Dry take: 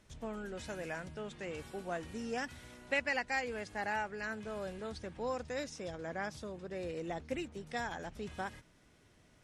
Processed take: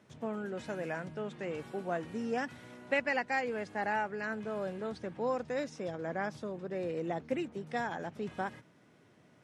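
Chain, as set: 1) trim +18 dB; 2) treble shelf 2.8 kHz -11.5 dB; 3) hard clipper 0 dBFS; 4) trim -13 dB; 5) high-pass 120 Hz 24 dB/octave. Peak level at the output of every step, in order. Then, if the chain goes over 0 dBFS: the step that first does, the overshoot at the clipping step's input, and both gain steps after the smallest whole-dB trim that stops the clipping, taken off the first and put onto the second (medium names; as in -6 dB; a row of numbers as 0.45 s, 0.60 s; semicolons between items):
-2.0 dBFS, -4.5 dBFS, -4.5 dBFS, -17.5 dBFS, -17.0 dBFS; nothing clips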